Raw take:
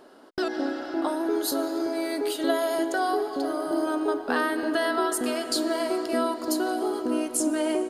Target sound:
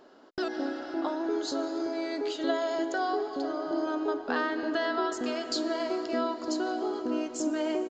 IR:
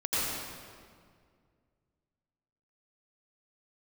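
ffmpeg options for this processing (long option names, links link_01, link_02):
-af "aresample=16000,aresample=44100,volume=-4dB"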